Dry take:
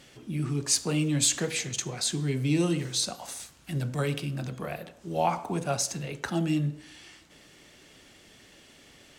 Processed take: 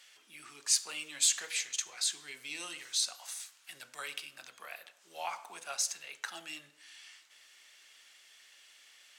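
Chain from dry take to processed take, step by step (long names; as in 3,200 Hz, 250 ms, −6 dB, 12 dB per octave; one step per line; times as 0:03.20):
high-pass filter 1,400 Hz 12 dB per octave
level −2.5 dB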